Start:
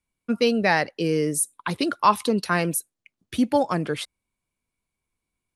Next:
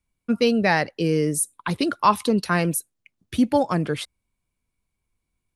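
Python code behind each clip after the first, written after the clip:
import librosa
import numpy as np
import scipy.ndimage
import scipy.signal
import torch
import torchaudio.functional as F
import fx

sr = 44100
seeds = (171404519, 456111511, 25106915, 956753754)

y = fx.low_shelf(x, sr, hz=140.0, db=9.0)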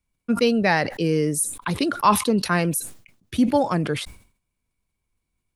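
y = fx.sustainer(x, sr, db_per_s=120.0)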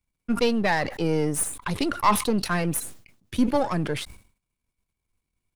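y = np.where(x < 0.0, 10.0 ** (-7.0 / 20.0) * x, x)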